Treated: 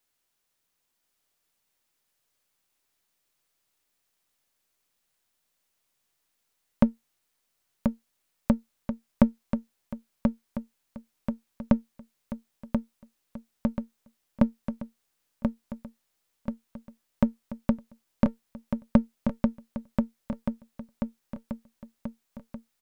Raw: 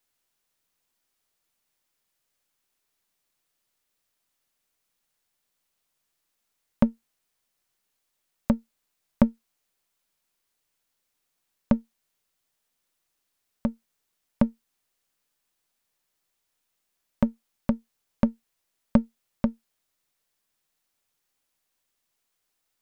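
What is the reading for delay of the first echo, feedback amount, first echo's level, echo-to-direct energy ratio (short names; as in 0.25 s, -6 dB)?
1.034 s, 52%, -5.5 dB, -4.0 dB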